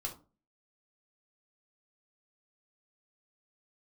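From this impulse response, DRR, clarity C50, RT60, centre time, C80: 0.0 dB, 11.5 dB, 0.35 s, 14 ms, 17.5 dB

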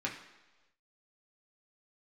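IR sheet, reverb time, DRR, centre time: not exponential, -3.0 dB, 26 ms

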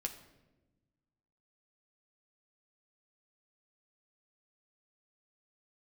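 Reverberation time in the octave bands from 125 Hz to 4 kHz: 1.9, 1.8, 1.3, 0.90, 0.85, 0.70 s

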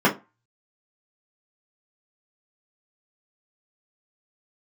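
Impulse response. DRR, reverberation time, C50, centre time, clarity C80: -5.0 dB, 0.25 s, 14.5 dB, 15 ms, 22.5 dB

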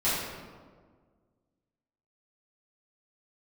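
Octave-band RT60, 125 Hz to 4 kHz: 2.0, 2.0, 1.8, 1.5, 1.1, 0.90 s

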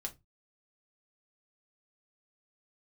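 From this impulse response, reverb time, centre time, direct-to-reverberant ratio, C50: 0.20 s, 7 ms, 2.5 dB, 19.5 dB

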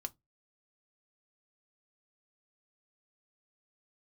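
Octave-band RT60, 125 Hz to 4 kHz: 0.30, 0.25, 0.20, 0.15, 0.15, 0.15 s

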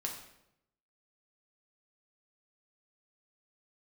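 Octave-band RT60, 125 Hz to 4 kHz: 1.0, 0.95, 0.90, 0.75, 0.70, 0.65 s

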